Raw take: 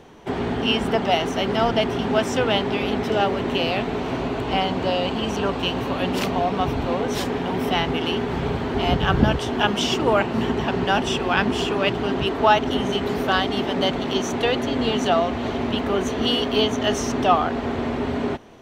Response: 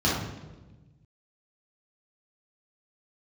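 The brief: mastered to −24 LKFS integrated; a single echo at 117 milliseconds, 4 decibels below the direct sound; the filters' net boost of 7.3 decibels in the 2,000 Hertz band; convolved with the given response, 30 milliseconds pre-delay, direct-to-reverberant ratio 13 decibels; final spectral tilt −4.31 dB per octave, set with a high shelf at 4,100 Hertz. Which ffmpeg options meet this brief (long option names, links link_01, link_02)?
-filter_complex "[0:a]equalizer=frequency=2000:width_type=o:gain=9,highshelf=frequency=4100:gain=3.5,aecho=1:1:117:0.631,asplit=2[link_01][link_02];[1:a]atrim=start_sample=2205,adelay=30[link_03];[link_02][link_03]afir=irnorm=-1:irlink=0,volume=-27.5dB[link_04];[link_01][link_04]amix=inputs=2:normalize=0,volume=-6dB"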